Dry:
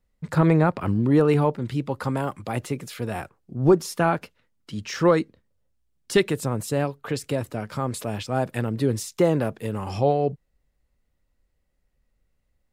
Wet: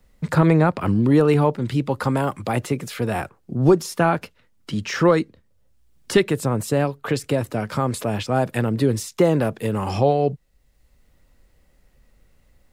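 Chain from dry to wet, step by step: three bands compressed up and down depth 40%; trim +3.5 dB

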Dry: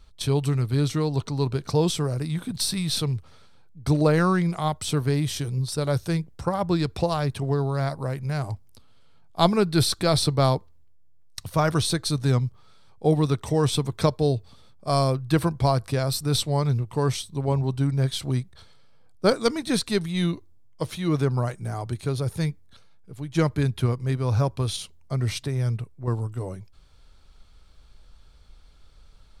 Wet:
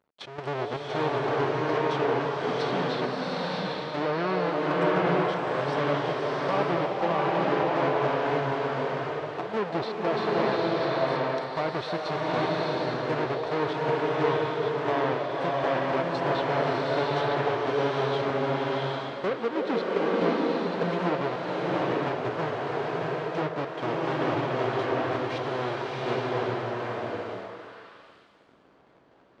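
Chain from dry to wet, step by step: square wave that keeps the level; high-pass 390 Hz 12 dB/octave; peak limiter -12.5 dBFS, peak gain reduction 13.5 dB; repeats whose band climbs or falls 310 ms, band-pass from 540 Hz, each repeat 1.4 oct, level -3 dB; trance gate ".x.xxx.xxxxx" 118 bpm -12 dB; low-pass that closes with the level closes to 2.7 kHz, closed at -18.5 dBFS; tape spacing loss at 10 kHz 34 dB; swelling reverb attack 810 ms, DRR -4 dB

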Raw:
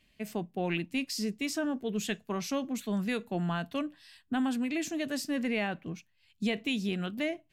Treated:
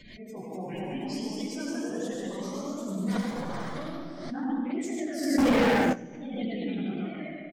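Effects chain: phase randomisation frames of 50 ms; 3.04–3.78 s: integer overflow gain 25.5 dB; feedback comb 240 Hz, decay 0.34 s, harmonics all, mix 70%; delay 570 ms -21 dB; spectral gate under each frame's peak -20 dB strong; reverberation RT60 1.3 s, pre-delay 74 ms, DRR -0.5 dB; ever faster or slower copies 258 ms, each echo +1 st, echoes 3; peaking EQ 2.7 kHz -15 dB 0.25 oct; 5.38–5.93 s: waveshaping leveller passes 5; flange 1.4 Hz, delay 8 ms, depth 8.5 ms, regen -49%; swell ahead of each attack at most 52 dB/s; trim +5 dB

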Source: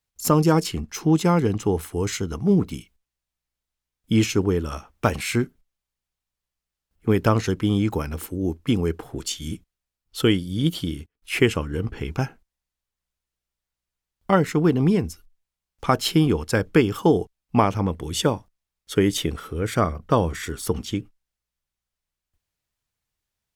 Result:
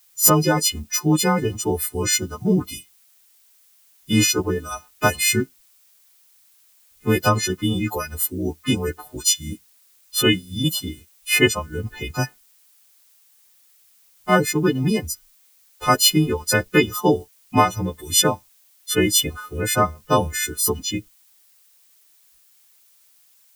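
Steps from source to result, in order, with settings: partials quantised in pitch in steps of 3 st; reverb removal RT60 1.2 s; added noise blue -58 dBFS; trim +1.5 dB

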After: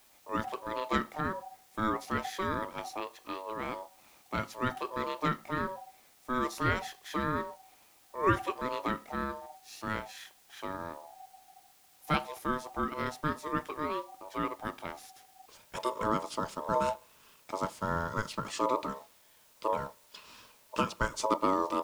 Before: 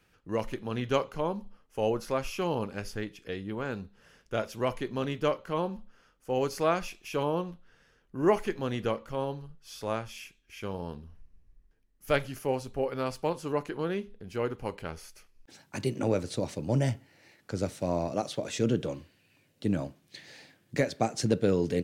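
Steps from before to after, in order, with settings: added noise white -60 dBFS; ring modulator 760 Hz

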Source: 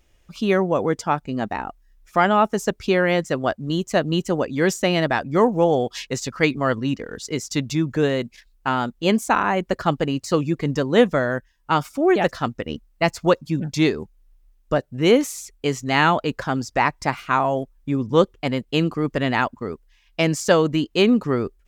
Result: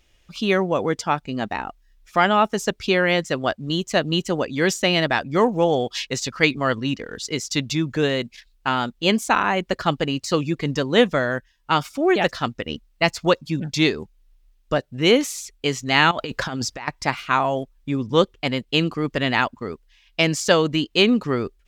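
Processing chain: peaking EQ 3.5 kHz +7.5 dB 1.8 oct; 16.11–16.88 s: compressor with a negative ratio -27 dBFS, ratio -1; trim -1.5 dB

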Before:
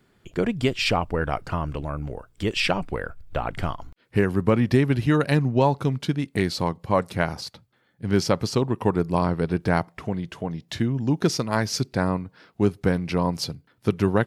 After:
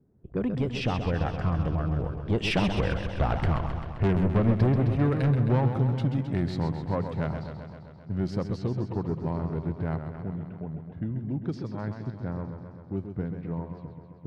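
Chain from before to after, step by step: Doppler pass-by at 3.31 s, 19 m/s, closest 16 m; high-pass 53 Hz 6 dB/octave; RIAA curve playback; level-controlled noise filter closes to 590 Hz, open at -26.5 dBFS; bass shelf 81 Hz -8.5 dB; in parallel at -3 dB: compression, threshold -28 dBFS, peak gain reduction 15.5 dB; on the sum: saturation -19 dBFS, distortion -8 dB; modulated delay 131 ms, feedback 70%, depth 107 cents, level -8 dB

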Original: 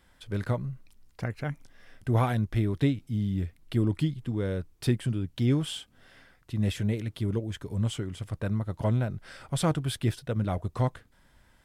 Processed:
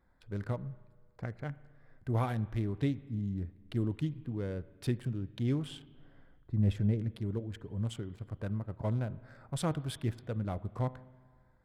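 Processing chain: local Wiener filter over 15 samples; 5.67–7.16 s: tilt EQ -2 dB/octave; spring tank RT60 1.6 s, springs 35/39 ms, chirp 75 ms, DRR 17.5 dB; trim -6.5 dB

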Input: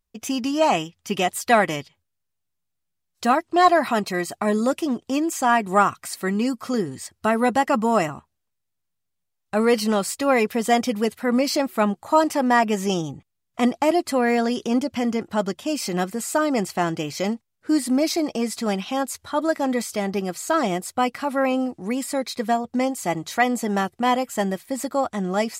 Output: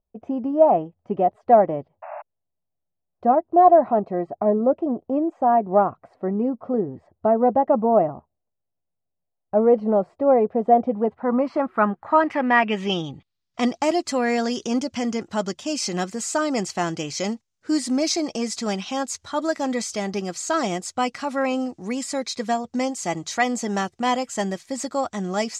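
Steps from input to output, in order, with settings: painted sound noise, 2.02–2.22 s, 580–2800 Hz -30 dBFS; low-pass sweep 660 Hz -> 6.5 kHz, 10.80–13.86 s; trim -2 dB

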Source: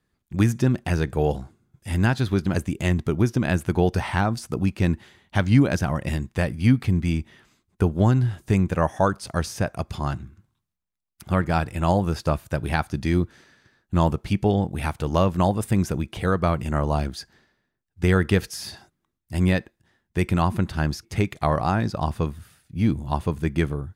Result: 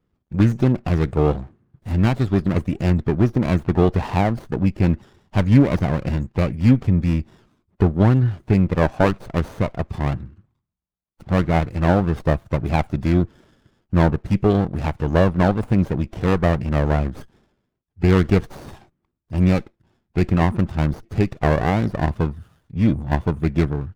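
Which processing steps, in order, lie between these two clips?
loudest bins only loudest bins 64; sliding maximum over 17 samples; trim +4 dB

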